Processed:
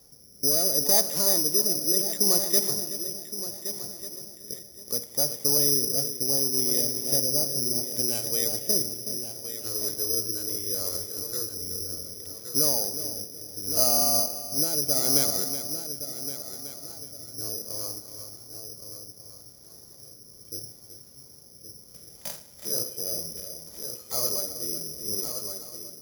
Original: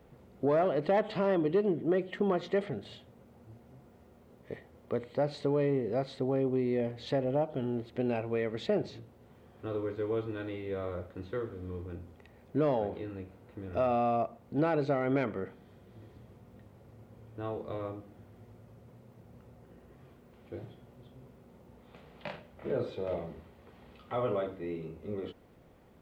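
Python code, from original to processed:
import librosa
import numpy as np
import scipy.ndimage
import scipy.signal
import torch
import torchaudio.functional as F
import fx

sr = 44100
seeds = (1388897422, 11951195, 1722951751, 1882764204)

p1 = x + fx.echo_heads(x, sr, ms=373, heads='first and third', feedback_pct=46, wet_db=-10, dry=0)
p2 = fx.rotary(p1, sr, hz=0.7)
p3 = fx.rev_spring(p2, sr, rt60_s=2.3, pass_ms=(59,), chirp_ms=60, drr_db=18.0)
p4 = (np.kron(scipy.signal.resample_poly(p3, 1, 8), np.eye(8)[0]) * 8)[:len(p3)]
y = p4 * librosa.db_to_amplitude(-2.5)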